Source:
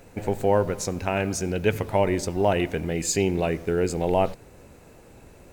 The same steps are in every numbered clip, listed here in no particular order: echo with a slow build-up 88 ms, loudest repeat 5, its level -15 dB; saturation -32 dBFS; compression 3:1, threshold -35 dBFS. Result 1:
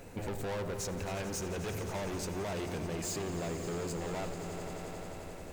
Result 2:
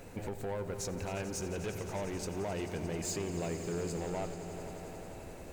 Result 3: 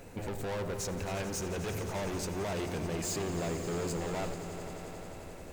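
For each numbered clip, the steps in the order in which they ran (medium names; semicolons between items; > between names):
saturation > echo with a slow build-up > compression; compression > saturation > echo with a slow build-up; saturation > compression > echo with a slow build-up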